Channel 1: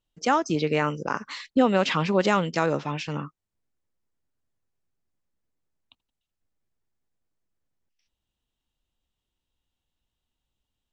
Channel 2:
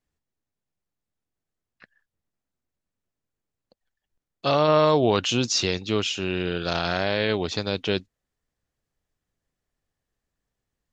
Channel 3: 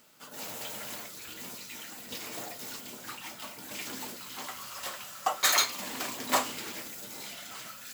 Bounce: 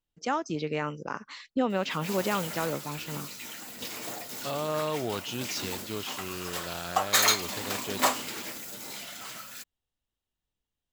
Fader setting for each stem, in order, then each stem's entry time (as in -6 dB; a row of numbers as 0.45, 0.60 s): -7.0, -12.0, +2.0 dB; 0.00, 0.00, 1.70 s